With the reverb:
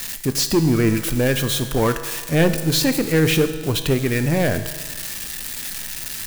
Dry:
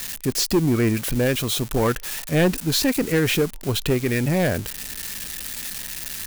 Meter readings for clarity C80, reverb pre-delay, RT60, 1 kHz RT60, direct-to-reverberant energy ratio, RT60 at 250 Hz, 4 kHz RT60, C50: 11.5 dB, 6 ms, 1.4 s, 1.4 s, 8.5 dB, 1.4 s, 1.4 s, 10.5 dB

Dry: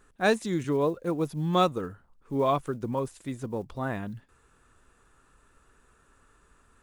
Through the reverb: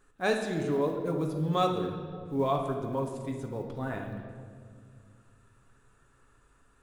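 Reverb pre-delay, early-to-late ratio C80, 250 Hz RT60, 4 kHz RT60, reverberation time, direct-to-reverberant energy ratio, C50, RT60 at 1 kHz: 7 ms, 7.0 dB, 2.9 s, 1.4 s, 2.1 s, 2.0 dB, 5.0 dB, 1.7 s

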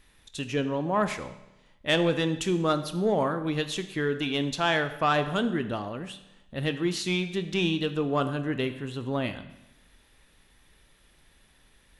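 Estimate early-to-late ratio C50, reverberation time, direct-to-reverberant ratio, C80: 12.0 dB, 0.95 s, 9.5 dB, 14.0 dB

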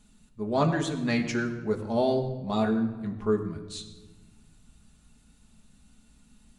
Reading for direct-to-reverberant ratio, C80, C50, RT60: 1.5 dB, 10.5 dB, 9.5 dB, 1.3 s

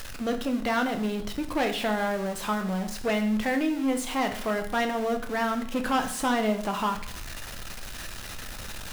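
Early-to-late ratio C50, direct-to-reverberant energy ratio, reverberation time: 10.5 dB, 5.5 dB, 0.55 s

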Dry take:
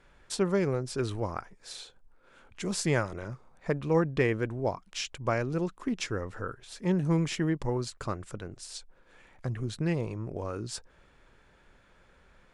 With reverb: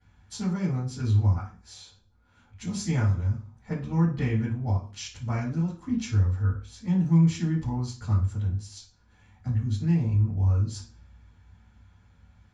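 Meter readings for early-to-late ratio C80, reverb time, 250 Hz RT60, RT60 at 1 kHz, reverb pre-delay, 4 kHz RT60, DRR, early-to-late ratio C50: 13.0 dB, 0.40 s, 0.55 s, 0.40 s, 3 ms, 0.40 s, -11.5 dB, 6.5 dB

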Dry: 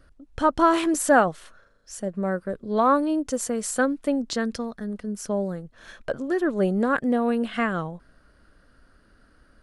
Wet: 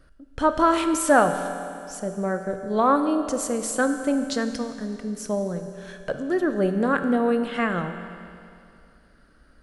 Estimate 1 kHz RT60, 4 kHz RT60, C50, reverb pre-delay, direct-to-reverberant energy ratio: 2.5 s, 2.5 s, 8.5 dB, 5 ms, 7.0 dB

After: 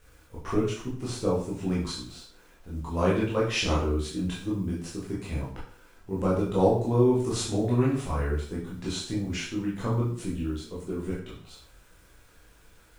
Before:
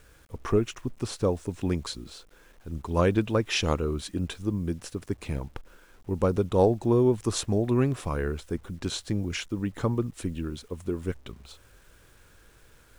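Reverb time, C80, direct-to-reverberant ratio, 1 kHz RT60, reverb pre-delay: 0.50 s, 8.5 dB, -7.0 dB, 0.45 s, 6 ms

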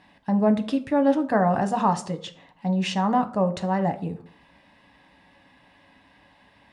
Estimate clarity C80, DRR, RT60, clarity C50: 19.5 dB, 7.0 dB, 0.55 s, 16.0 dB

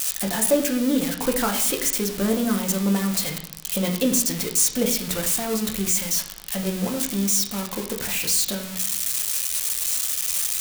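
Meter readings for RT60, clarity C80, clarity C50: 0.70 s, 12.0 dB, 8.5 dB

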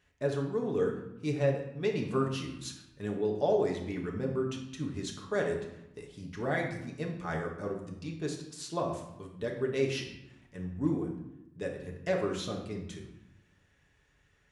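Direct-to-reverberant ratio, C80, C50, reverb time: -0.5 dB, 8.5 dB, 6.0 dB, 0.90 s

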